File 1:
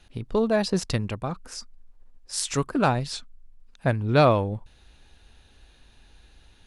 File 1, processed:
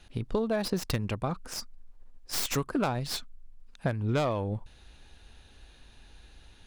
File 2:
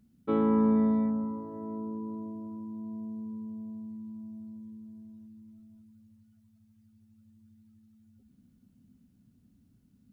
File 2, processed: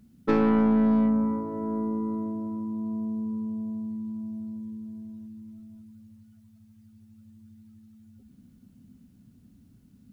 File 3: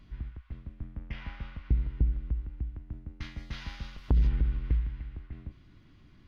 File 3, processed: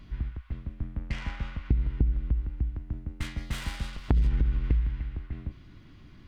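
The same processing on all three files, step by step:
tracing distortion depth 0.21 ms; compressor 6:1, threshold -26 dBFS; normalise peaks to -12 dBFS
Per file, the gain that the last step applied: +0.5, +8.0, +6.0 dB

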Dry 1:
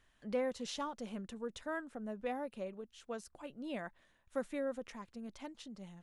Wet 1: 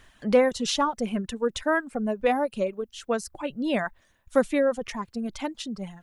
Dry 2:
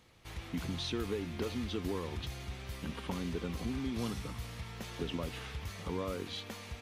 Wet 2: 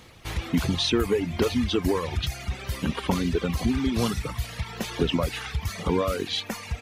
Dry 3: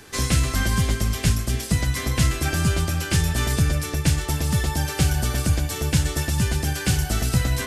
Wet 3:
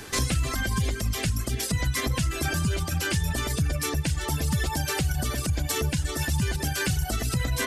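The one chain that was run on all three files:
compressor 6:1, threshold -22 dBFS; limiter -20 dBFS; reverb removal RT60 1.4 s; match loudness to -27 LUFS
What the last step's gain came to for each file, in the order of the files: +16.5, +14.0, +5.5 dB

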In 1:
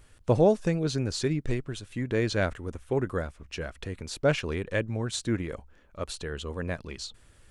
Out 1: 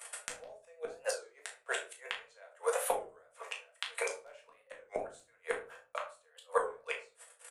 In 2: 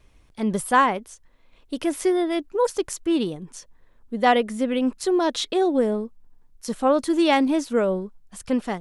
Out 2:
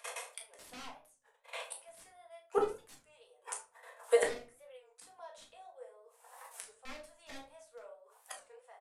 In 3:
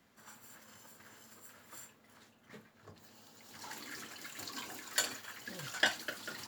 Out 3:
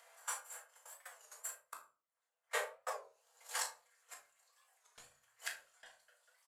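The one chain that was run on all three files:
gate -51 dBFS, range -57 dB; steep high-pass 490 Hz 72 dB/oct; resonant high shelf 6800 Hz +13 dB, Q 1.5; upward compressor, threshold -36 dBFS; wrapped overs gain 14.5 dB; flipped gate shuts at -30 dBFS, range -41 dB; air absorption 60 m; doubler 36 ms -9.5 dB; shoebox room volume 210 m³, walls furnished, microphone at 1.7 m; downsampling 32000 Hz; record warp 33 1/3 rpm, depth 160 cents; gain +11.5 dB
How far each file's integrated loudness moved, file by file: -9.5, -16.0, -6.0 LU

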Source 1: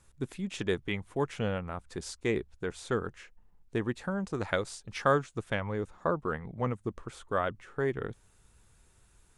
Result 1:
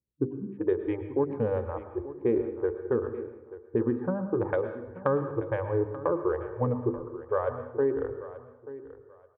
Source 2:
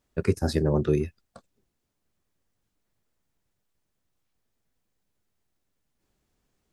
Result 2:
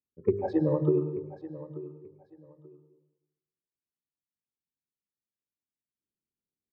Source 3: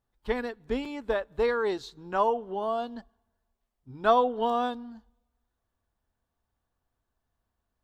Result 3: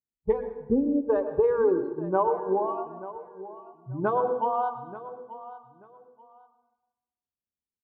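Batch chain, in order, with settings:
Wiener smoothing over 15 samples; spectral noise reduction 30 dB; LPF 1100 Hz 12 dB/oct; notches 50/100/150/200/250/300/350/400/450/500 Hz; low-pass opened by the level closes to 540 Hz, open at -28 dBFS; bell 270 Hz +8 dB 2.7 oct; compressor, threshold -26 dBFS; notch comb 680 Hz; feedback echo 0.884 s, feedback 23%, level -15.5 dB; plate-style reverb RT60 1 s, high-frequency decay 0.65×, pre-delay 95 ms, DRR 9.5 dB; normalise peaks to -12 dBFS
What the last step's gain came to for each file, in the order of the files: +4.5, +4.5, +7.0 dB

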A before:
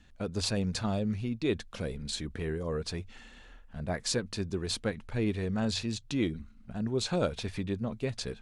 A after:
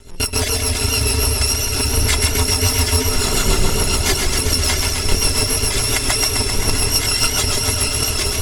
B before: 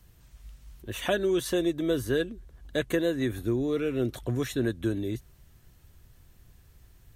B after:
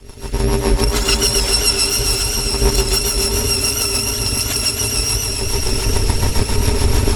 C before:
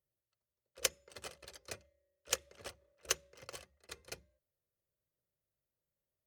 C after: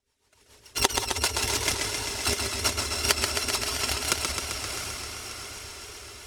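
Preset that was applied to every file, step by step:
FFT order left unsorted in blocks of 256 samples; recorder AGC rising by 58 dB/s; LPF 8300 Hz 12 dB/oct; in parallel at +2 dB: compressor, threshold -40 dBFS; on the sum: rotary speaker horn 7 Hz; small resonant body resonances 400/920 Hz, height 10 dB, ringing for 50 ms; on a send: diffused feedback echo 0.687 s, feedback 55%, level -5.5 dB; on the sum: non-linear reverb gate 0.21 s rising, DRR 6 dB; reverb removal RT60 0.99 s; warbling echo 0.131 s, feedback 77%, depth 84 cents, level -5 dB; normalise peaks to -1.5 dBFS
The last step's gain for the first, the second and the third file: +12.0, +10.5, +7.0 dB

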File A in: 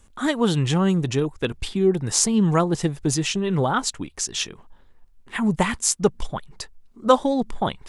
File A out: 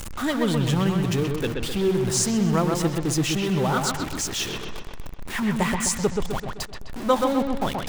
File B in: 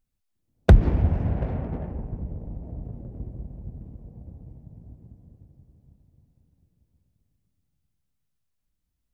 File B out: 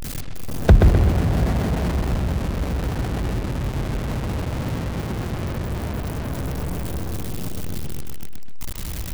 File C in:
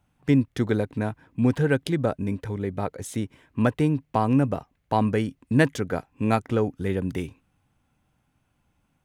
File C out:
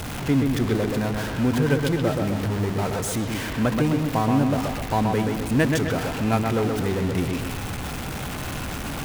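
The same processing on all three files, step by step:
zero-crossing step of -22.5 dBFS; dark delay 0.128 s, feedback 49%, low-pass 3600 Hz, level -4 dB; match loudness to -24 LUFS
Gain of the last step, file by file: -5.5, +0.5, -3.0 dB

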